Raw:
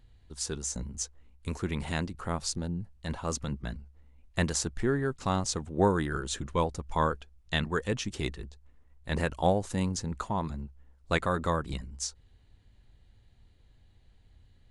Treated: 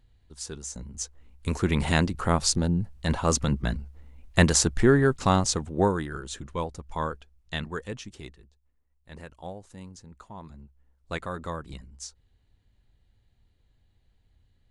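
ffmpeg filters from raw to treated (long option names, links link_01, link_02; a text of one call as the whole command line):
ffmpeg -i in.wav -af "volume=17.5dB,afade=type=in:start_time=0.83:duration=1.02:silence=0.251189,afade=type=out:start_time=5.06:duration=1.02:silence=0.251189,afade=type=out:start_time=7.65:duration=0.78:silence=0.281838,afade=type=in:start_time=10.19:duration=0.93:silence=0.375837" out.wav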